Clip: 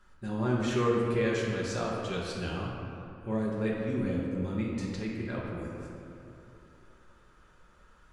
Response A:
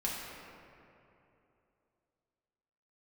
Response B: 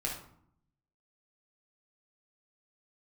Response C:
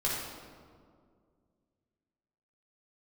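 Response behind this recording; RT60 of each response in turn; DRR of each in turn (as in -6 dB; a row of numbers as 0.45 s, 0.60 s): A; 2.9 s, 0.65 s, 2.1 s; -5.0 dB, -2.5 dB, -6.0 dB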